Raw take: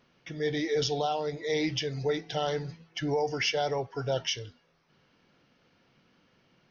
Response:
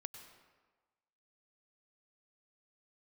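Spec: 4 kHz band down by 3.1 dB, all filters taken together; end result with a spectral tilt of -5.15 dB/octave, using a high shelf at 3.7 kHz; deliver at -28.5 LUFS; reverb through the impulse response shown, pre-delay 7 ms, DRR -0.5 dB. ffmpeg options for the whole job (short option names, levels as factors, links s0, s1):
-filter_complex "[0:a]highshelf=f=3700:g=5,equalizer=f=4000:t=o:g=-8.5,asplit=2[s0][s1];[1:a]atrim=start_sample=2205,adelay=7[s2];[s1][s2]afir=irnorm=-1:irlink=0,volume=1.68[s3];[s0][s3]amix=inputs=2:normalize=0,volume=0.794"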